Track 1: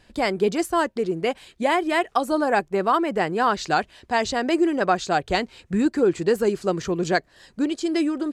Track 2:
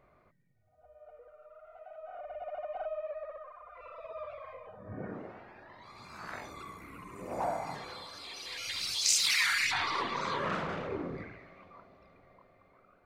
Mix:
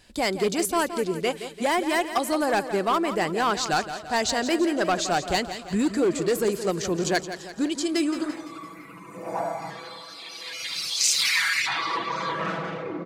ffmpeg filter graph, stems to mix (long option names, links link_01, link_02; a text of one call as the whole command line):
ffmpeg -i stem1.wav -i stem2.wav -filter_complex "[0:a]highshelf=frequency=3800:gain=11,asoftclip=type=hard:threshold=-15dB,volume=-2.5dB,asplit=3[link_01][link_02][link_03];[link_02]volume=-11dB[link_04];[1:a]highpass=140,aecho=1:1:6.1:0.87,adelay=1950,volume=2.5dB[link_05];[link_03]apad=whole_len=662059[link_06];[link_05][link_06]sidechaincompress=threshold=-27dB:ratio=8:attack=16:release=974[link_07];[link_04]aecho=0:1:170|340|510|680|850|1020|1190:1|0.5|0.25|0.125|0.0625|0.0312|0.0156[link_08];[link_01][link_07][link_08]amix=inputs=3:normalize=0" out.wav